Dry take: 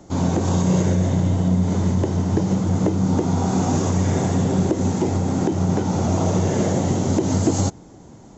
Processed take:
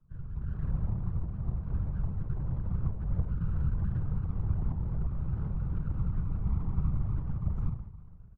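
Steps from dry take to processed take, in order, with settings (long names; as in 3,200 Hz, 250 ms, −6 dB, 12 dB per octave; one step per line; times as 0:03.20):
spectral peaks only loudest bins 32
four-pole ladder band-pass 1,800 Hz, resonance 35%
formants moved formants −3 semitones
downward compressor 3 to 1, threshold −54 dBFS, peak gain reduction 6.5 dB
on a send at −6 dB: convolution reverb, pre-delay 11 ms
on the sum: automatic gain control gain up to 13 dB
comb filter 5.6 ms, depth 65%
full-wave rectification
spectral tilt −4.5 dB per octave
random phases in short frames
level −8.5 dB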